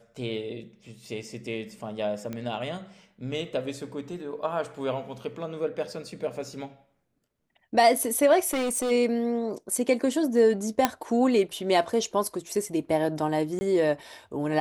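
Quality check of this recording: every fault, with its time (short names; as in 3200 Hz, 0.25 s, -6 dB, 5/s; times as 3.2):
2.33 pop -21 dBFS
8.46–8.92 clipped -24 dBFS
10.85 pop -5 dBFS
13.59–13.61 gap 20 ms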